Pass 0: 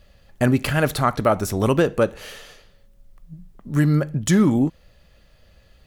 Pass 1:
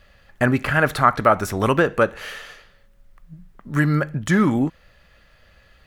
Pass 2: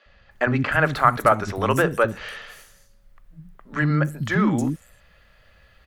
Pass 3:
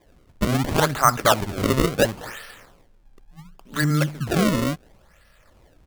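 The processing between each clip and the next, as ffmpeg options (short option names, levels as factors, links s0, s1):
-filter_complex "[0:a]equalizer=f=1600:w=0.77:g=10.5,acrossover=split=1800[s0][s1];[s1]alimiter=limit=0.126:level=0:latency=1:release=162[s2];[s0][s2]amix=inputs=2:normalize=0,volume=0.794"
-filter_complex "[0:a]acrossover=split=300|6000[s0][s1][s2];[s0]adelay=60[s3];[s2]adelay=310[s4];[s3][s1][s4]amix=inputs=3:normalize=0,volume=0.891"
-af "acrusher=samples=31:mix=1:aa=0.000001:lfo=1:lforange=49.6:lforate=0.71"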